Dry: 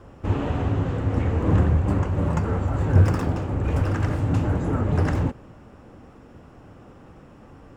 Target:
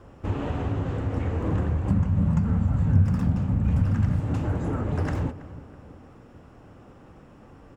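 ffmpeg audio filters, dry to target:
ffmpeg -i in.wav -filter_complex "[0:a]asettb=1/sr,asplit=3[link_01][link_02][link_03];[link_01]atrim=end=1.904[link_04];[link_02]atrim=start=1.9:end=4.2,asetpts=PTS-STARTPTS,afade=type=in:duration=0.004:curve=qsin,afade=type=out:start_time=2.296:duration=0.004:curve=qsin,lowshelf=frequency=270:width_type=q:width=3:gain=8[link_05];[link_03]atrim=start=4.196[link_06];[link_04][link_05]acrossfade=duration=0.004:curve1=hsin:curve2=qsin[link_07];[link_07][link_06]acrossfade=duration=0.004:curve1=qsin:curve2=hsin,acompressor=threshold=-21dB:ratio=2,asplit=2[link_08][link_09];[link_09]adelay=326,lowpass=frequency=1900:poles=1,volume=-16dB,asplit=2[link_10][link_11];[link_11]adelay=326,lowpass=frequency=1900:poles=1,volume=0.48,asplit=2[link_12][link_13];[link_13]adelay=326,lowpass=frequency=1900:poles=1,volume=0.48,asplit=2[link_14][link_15];[link_15]adelay=326,lowpass=frequency=1900:poles=1,volume=0.48[link_16];[link_08][link_10][link_12][link_14][link_16]amix=inputs=5:normalize=0,volume=-2.5dB" out.wav

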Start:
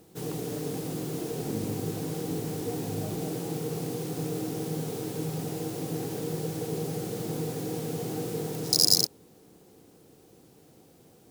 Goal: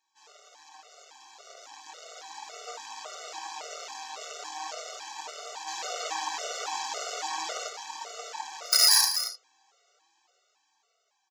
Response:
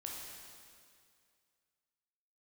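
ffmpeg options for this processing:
-filter_complex "[0:a]aresample=16000,aresample=44100[link_01];[1:a]atrim=start_sample=2205,atrim=end_sample=3528[link_02];[link_01][link_02]afir=irnorm=-1:irlink=0,flanger=delay=4.4:depth=3.3:regen=33:speed=0.37:shape=sinusoidal,aeval=exprs='0.168*(cos(1*acos(clip(val(0)/0.168,-1,1)))-cos(1*PI/2))+0.0422*(cos(8*acos(clip(val(0)/0.168,-1,1)))-cos(8*PI/2))':channel_layout=same,dynaudnorm=framelen=660:gausssize=7:maxgain=14dB,aecho=1:1:231:0.282,asplit=3[link_03][link_04][link_05];[link_03]afade=type=out:start_time=5.67:duration=0.02[link_06];[link_04]acontrast=74,afade=type=in:start_time=5.67:duration=0.02,afade=type=out:start_time=7.68:duration=0.02[link_07];[link_05]afade=type=in:start_time=7.68:duration=0.02[link_08];[link_06][link_07][link_08]amix=inputs=3:normalize=0,highpass=frequency=800:width=0.5412,highpass=frequency=800:width=1.3066,afftfilt=real='re*gt(sin(2*PI*1.8*pts/sr)*(1-2*mod(floor(b*sr/1024/380),2)),0)':imag='im*gt(sin(2*PI*1.8*pts/sr)*(1-2*mod(floor(b*sr/1024/380),2)),0)':win_size=1024:overlap=0.75"

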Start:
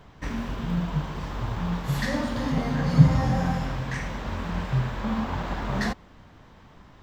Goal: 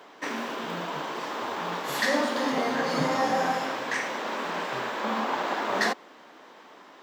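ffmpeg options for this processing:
ffmpeg -i in.wav -af "highpass=frequency=310:width=0.5412,highpass=frequency=310:width=1.3066,volume=5.5dB" out.wav

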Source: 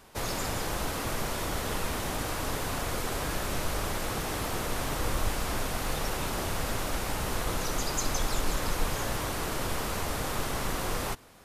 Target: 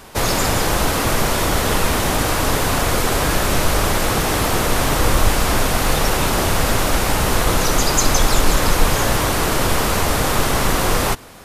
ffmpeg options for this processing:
ffmpeg -i in.wav -af "acontrast=55,volume=8dB" out.wav

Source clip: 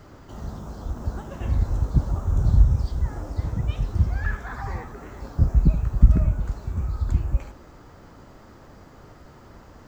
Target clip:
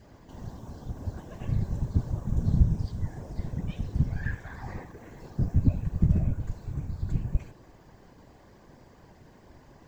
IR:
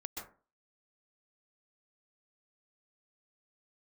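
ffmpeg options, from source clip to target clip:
-af "asuperstop=centerf=1300:order=4:qfactor=4.6,afftfilt=real='hypot(re,im)*cos(2*PI*random(0))':imag='hypot(re,im)*sin(2*PI*random(1))':win_size=512:overlap=0.75,adynamicequalizer=threshold=0.00126:dfrequency=910:dqfactor=2.1:tfrequency=910:tqfactor=2.1:attack=5:release=100:ratio=0.375:range=1.5:mode=cutabove:tftype=bell"

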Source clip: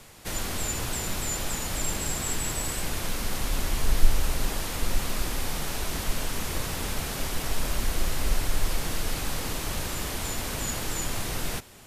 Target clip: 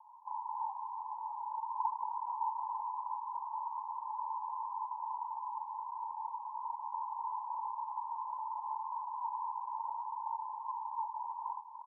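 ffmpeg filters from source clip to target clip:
ffmpeg -i in.wav -af "acrusher=samples=20:mix=1:aa=0.000001:lfo=1:lforange=20:lforate=0.21,asuperpass=centerf=940:order=8:qfactor=5,aecho=1:1:293:0.316,volume=5dB" out.wav

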